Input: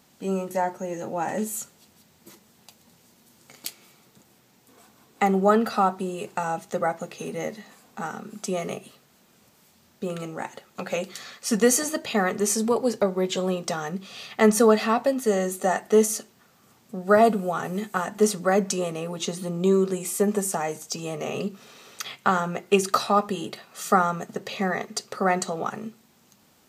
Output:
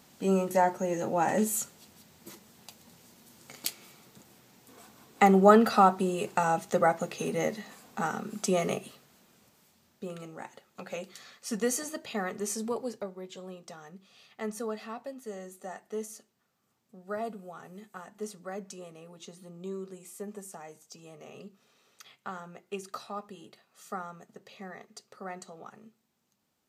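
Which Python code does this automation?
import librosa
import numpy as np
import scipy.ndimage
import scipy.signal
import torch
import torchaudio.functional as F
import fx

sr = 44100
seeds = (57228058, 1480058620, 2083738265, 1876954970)

y = fx.gain(x, sr, db=fx.line((8.77, 1.0), (10.22, -10.0), (12.76, -10.0), (13.2, -18.0)))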